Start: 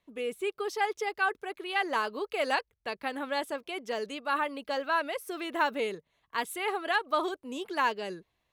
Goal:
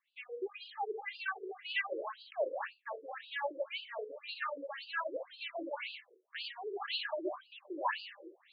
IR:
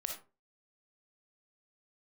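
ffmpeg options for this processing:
-filter_complex "[0:a]areverse,acompressor=mode=upward:threshold=-40dB:ratio=2.5,areverse,aemphasis=mode=production:type=50fm[link_01];[1:a]atrim=start_sample=2205,asetrate=40572,aresample=44100[link_02];[link_01][link_02]afir=irnorm=-1:irlink=0,acrossover=split=1900[link_03][link_04];[link_03]aeval=exprs='val(0)*(1-0.5/2+0.5/2*cos(2*PI*4.1*n/s))':channel_layout=same[link_05];[link_04]aeval=exprs='val(0)*(1-0.5/2-0.5/2*cos(2*PI*4.1*n/s))':channel_layout=same[link_06];[link_05][link_06]amix=inputs=2:normalize=0,afftfilt=real='re*between(b*sr/1024,380*pow(3600/380,0.5+0.5*sin(2*PI*1.9*pts/sr))/1.41,380*pow(3600/380,0.5+0.5*sin(2*PI*1.9*pts/sr))*1.41)':imag='im*between(b*sr/1024,380*pow(3600/380,0.5+0.5*sin(2*PI*1.9*pts/sr))/1.41,380*pow(3600/380,0.5+0.5*sin(2*PI*1.9*pts/sr))*1.41)':win_size=1024:overlap=0.75"

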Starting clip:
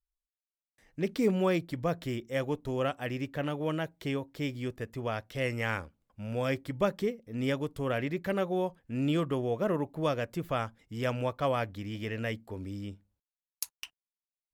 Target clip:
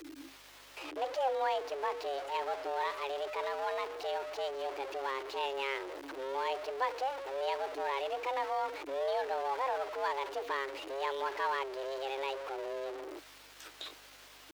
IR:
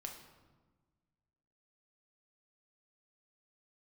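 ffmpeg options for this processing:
-filter_complex "[0:a]aeval=exprs='val(0)+0.5*0.0376*sgn(val(0))':channel_layout=same,acrossover=split=4200[link_01][link_02];[link_02]acompressor=threshold=-51dB:ratio=4:attack=1:release=60[link_03];[link_01][link_03]amix=inputs=2:normalize=0,afreqshift=220,asetrate=53981,aresample=44100,atempo=0.816958,bass=frequency=250:gain=-12,treble=frequency=4000:gain=-2,aeval=exprs='val(0)+0.000708*(sin(2*PI*50*n/s)+sin(2*PI*2*50*n/s)/2+sin(2*PI*3*50*n/s)/3+sin(2*PI*4*50*n/s)/4+sin(2*PI*5*50*n/s)/5)':channel_layout=same,volume=-7dB"

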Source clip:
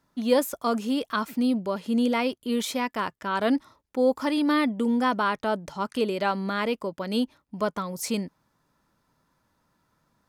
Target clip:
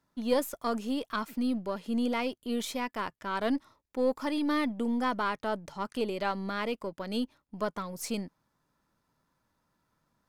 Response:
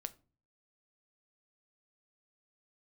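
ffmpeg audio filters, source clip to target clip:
-af "aeval=exprs='if(lt(val(0),0),0.708*val(0),val(0))':channel_layout=same,volume=-4.5dB"

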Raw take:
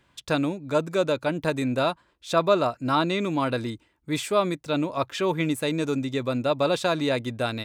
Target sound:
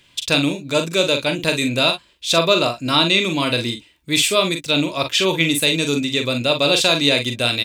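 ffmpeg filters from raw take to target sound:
ffmpeg -i in.wav -af "highshelf=frequency=2000:width_type=q:width=1.5:gain=10,bandreject=frequency=810:width=12,aecho=1:1:42|56:0.447|0.178,volume=4dB" out.wav

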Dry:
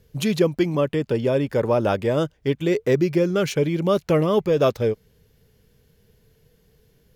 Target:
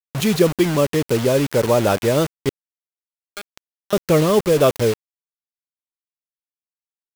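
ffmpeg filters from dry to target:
ffmpeg -i in.wav -filter_complex "[0:a]asettb=1/sr,asplit=3[link_01][link_02][link_03];[link_01]atrim=end=2.494[link_04];[link_02]atrim=start=2.49:end=3.93,asetpts=PTS-STARTPTS,afade=type=in:duration=0.004:curve=qsin,afade=type=out:start_time=1.436:duration=0.004:curve=qsin,bandpass=frequency=1500:width_type=q:width=7.9:csg=0[link_05];[link_03]atrim=start=3.926[link_06];[link_04][link_05]acrossfade=duration=0.004:curve1=hsin:curve2=qsin[link_07];[link_07][link_06]acrossfade=duration=0.004:curve1=qsin:curve2=hsin,acrusher=bits=4:mix=0:aa=0.000001,volume=3.5dB" out.wav

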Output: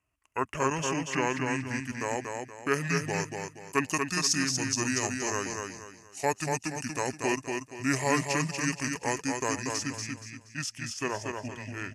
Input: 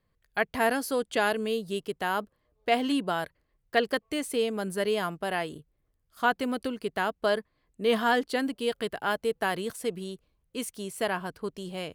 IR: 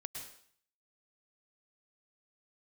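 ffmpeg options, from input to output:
-filter_complex "[0:a]highpass=frequency=70:width=0.5412,highpass=frequency=70:width=1.3066,highshelf=frequency=3000:gain=8.5,bandreject=frequency=370:width=12,acrossover=split=6700[link_01][link_02];[link_01]lowpass=frequency=4800:width_type=q:width=2.2[link_03];[link_02]dynaudnorm=framelen=270:gausssize=21:maxgain=13dB[link_04];[link_03][link_04]amix=inputs=2:normalize=0,asetrate=26222,aresample=44100,atempo=1.68179,aecho=1:1:237|474|711|948:0.596|0.197|0.0649|0.0214,volume=-5dB"

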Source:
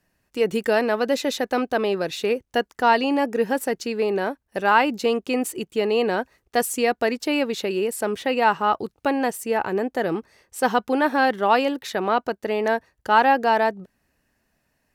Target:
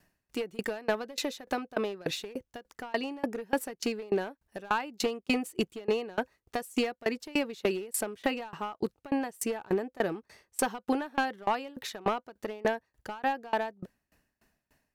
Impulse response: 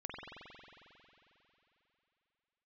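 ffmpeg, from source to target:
-af "bandreject=frequency=510:width=16,acompressor=threshold=-25dB:ratio=10,aeval=exprs='clip(val(0),-1,0.0668)':channel_layout=same,aeval=exprs='val(0)*pow(10,-27*if(lt(mod(3.4*n/s,1),2*abs(3.4)/1000),1-mod(3.4*n/s,1)/(2*abs(3.4)/1000),(mod(3.4*n/s,1)-2*abs(3.4)/1000)/(1-2*abs(3.4)/1000))/20)':channel_layout=same,volume=5.5dB"

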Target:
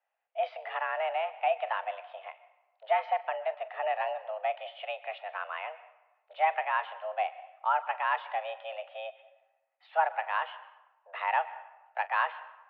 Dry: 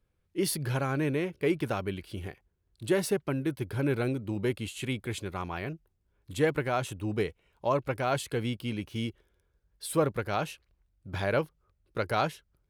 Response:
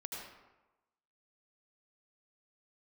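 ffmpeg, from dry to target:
-filter_complex "[0:a]highpass=frequency=280:width_type=q:width=0.5412,highpass=frequency=280:width_type=q:width=1.307,lowpass=frequency=2600:width_type=q:width=0.5176,lowpass=frequency=2600:width_type=q:width=0.7071,lowpass=frequency=2600:width_type=q:width=1.932,afreqshift=320,asplit=2[link_01][link_02];[link_02]highshelf=frequency=2300:gain=10[link_03];[1:a]atrim=start_sample=2205,highshelf=frequency=4400:gain=-11.5,adelay=43[link_04];[link_03][link_04]afir=irnorm=-1:irlink=0,volume=-14.5dB[link_05];[link_01][link_05]amix=inputs=2:normalize=0"

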